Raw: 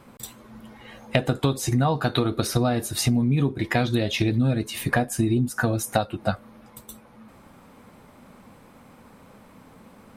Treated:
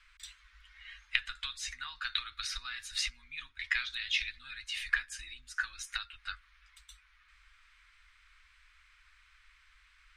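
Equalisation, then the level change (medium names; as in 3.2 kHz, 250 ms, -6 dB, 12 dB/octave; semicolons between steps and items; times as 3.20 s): inverse Chebyshev band-stop 110–720 Hz, stop band 50 dB; distance through air 120 m; 0.0 dB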